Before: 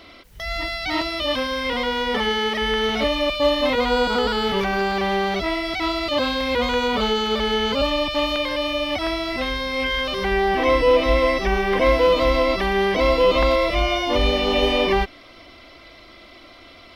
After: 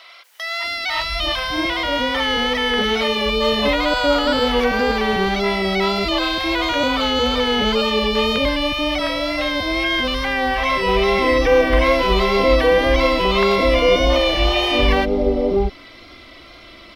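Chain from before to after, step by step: bands offset in time highs, lows 0.64 s, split 680 Hz; wow and flutter 29 cents; gain +4 dB

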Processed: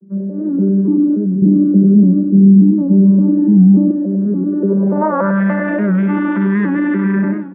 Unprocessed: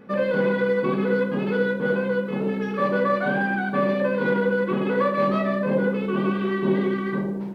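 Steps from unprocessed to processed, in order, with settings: arpeggiated vocoder bare fifth, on G3, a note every 0.289 s; analogue delay 98 ms, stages 2048, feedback 44%, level -4 dB; limiter -18.5 dBFS, peak gain reduction 7.5 dB; low-pass sweep 290 Hz -> 2000 Hz, 4.5–5.44; 1.42–3.91 tilt -3.5 dB/oct; AGC gain up to 10 dB; Bessel high-pass 160 Hz; comb 5.7 ms, depth 39%; record warp 78 rpm, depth 100 cents

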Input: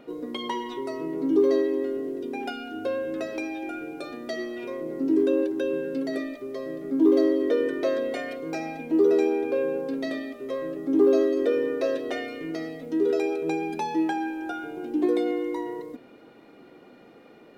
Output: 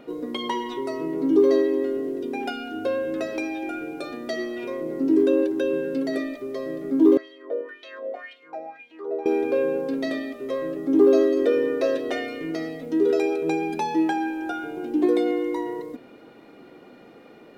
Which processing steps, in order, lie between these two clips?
7.17–9.26 wah 1.9 Hz 590–3300 Hz, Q 4; gain +3 dB

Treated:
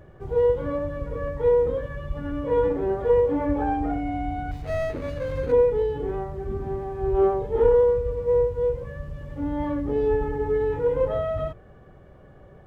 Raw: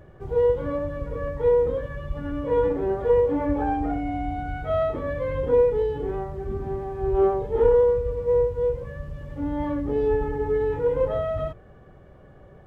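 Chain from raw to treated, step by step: 4.51–5.52 median filter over 41 samples

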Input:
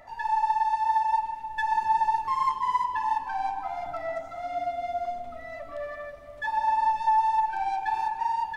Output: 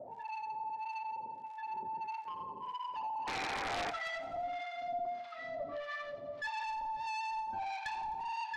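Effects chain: HPF 120 Hz 24 dB/oct; in parallel at 0 dB: compressor, threshold -33 dBFS, peak gain reduction 13 dB; on the sum: low-pass sweep 520 Hz -> 4600 Hz, 2.74–4.88; crackle 130/s -46 dBFS; soft clip -29.5 dBFS, distortion -6 dB; harmonic tremolo 1.6 Hz, depth 100%, crossover 920 Hz; painted sound noise, 3.27–3.91, 270–2500 Hz -38 dBFS; wrapped overs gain 27.5 dB; air absorption 97 m; on a send: thinning echo 86 ms, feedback 71%, high-pass 700 Hz, level -16 dB; on the sum: gain -1 dB

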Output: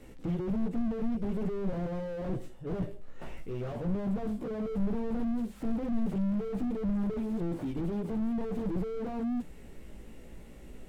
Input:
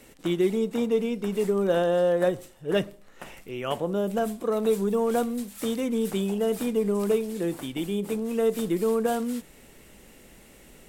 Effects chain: tilt -2.5 dB/oct; chorus 0.45 Hz, delay 15.5 ms, depth 2.6 ms; slew limiter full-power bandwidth 7.8 Hz

